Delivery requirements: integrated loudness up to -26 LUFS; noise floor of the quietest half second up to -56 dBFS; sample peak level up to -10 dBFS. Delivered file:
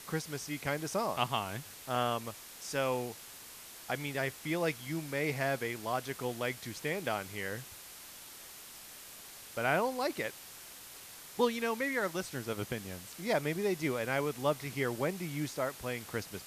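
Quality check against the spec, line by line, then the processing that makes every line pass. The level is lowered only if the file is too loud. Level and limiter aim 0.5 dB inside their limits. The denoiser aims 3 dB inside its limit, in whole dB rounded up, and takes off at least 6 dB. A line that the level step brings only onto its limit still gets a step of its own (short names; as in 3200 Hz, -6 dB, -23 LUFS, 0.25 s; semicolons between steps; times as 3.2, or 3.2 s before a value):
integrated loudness -35.0 LUFS: OK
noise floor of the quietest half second -50 dBFS: fail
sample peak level -14.5 dBFS: OK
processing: denoiser 9 dB, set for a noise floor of -50 dBFS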